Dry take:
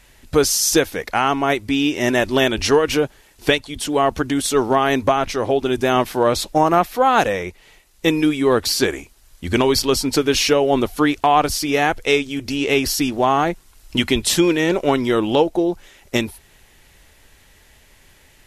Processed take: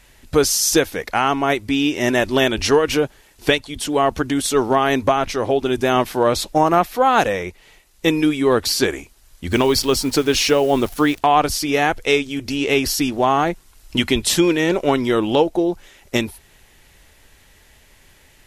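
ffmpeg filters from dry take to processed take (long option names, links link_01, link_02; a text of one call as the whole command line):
ffmpeg -i in.wav -filter_complex "[0:a]asplit=3[link_01][link_02][link_03];[link_01]afade=type=out:start_time=9.51:duration=0.02[link_04];[link_02]acrusher=bits=7:dc=4:mix=0:aa=0.000001,afade=type=in:start_time=9.51:duration=0.02,afade=type=out:start_time=11.18:duration=0.02[link_05];[link_03]afade=type=in:start_time=11.18:duration=0.02[link_06];[link_04][link_05][link_06]amix=inputs=3:normalize=0" out.wav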